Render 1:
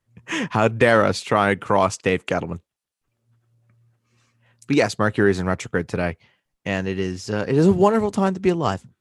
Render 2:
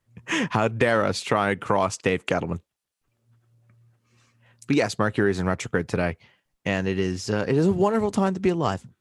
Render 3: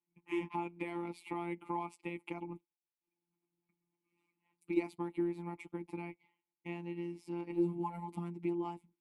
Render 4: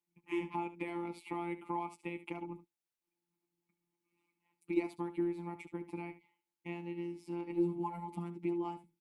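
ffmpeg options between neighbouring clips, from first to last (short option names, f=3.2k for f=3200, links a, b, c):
-af "acompressor=threshold=-21dB:ratio=2.5,volume=1.5dB"
-filter_complex "[0:a]asplit=3[a][b][c];[a]bandpass=f=300:t=q:w=8,volume=0dB[d];[b]bandpass=f=870:t=q:w=8,volume=-6dB[e];[c]bandpass=f=2.24k:t=q:w=8,volume=-9dB[f];[d][e][f]amix=inputs=3:normalize=0,afftfilt=real='hypot(re,im)*cos(PI*b)':imag='0':win_size=1024:overlap=0.75,aexciter=amount=13.8:drive=5.9:freq=9.1k"
-af "aecho=1:1:72:0.2"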